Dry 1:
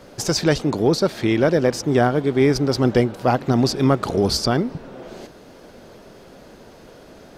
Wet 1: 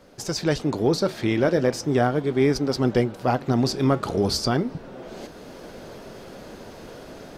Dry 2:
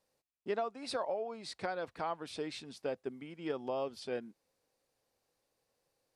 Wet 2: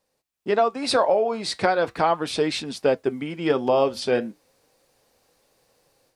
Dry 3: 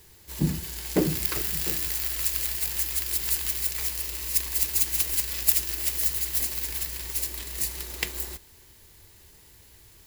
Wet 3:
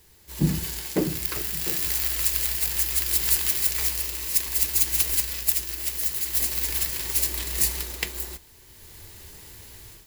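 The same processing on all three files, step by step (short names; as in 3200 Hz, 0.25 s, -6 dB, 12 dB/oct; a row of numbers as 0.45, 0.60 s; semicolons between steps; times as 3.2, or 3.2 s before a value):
AGC gain up to 11.5 dB; flange 0.38 Hz, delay 3.7 ms, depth 6.7 ms, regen -74%; match loudness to -23 LUFS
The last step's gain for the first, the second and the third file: -3.5, +9.5, +1.5 dB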